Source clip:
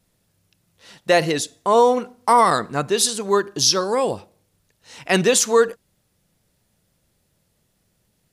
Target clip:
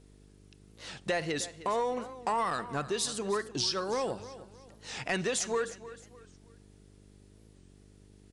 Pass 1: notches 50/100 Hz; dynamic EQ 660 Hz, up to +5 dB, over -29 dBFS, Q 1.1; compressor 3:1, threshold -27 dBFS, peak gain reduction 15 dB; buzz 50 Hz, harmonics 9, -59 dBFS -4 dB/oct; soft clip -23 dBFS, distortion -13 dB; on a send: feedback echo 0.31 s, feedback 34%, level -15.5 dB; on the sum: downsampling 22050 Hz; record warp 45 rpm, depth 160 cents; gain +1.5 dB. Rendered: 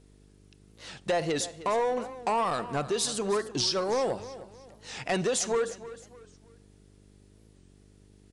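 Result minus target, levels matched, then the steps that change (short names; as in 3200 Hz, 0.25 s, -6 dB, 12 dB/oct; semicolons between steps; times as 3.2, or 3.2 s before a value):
2000 Hz band -3.5 dB; compressor: peak gain reduction -3.5 dB
change: dynamic EQ 1800 Hz, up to +5 dB, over -29 dBFS, Q 1.1; change: compressor 3:1, threshold -34 dBFS, peak gain reduction 18 dB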